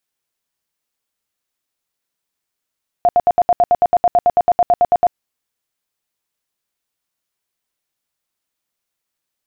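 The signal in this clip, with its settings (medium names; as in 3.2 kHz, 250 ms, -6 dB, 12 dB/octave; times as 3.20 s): tone bursts 705 Hz, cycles 27, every 0.11 s, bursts 19, -8 dBFS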